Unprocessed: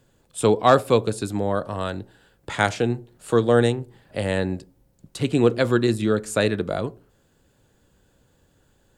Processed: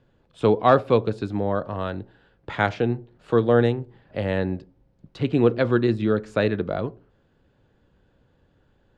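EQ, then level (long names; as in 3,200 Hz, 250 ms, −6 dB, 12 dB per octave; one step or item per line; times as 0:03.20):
high-frequency loss of the air 240 metres
0.0 dB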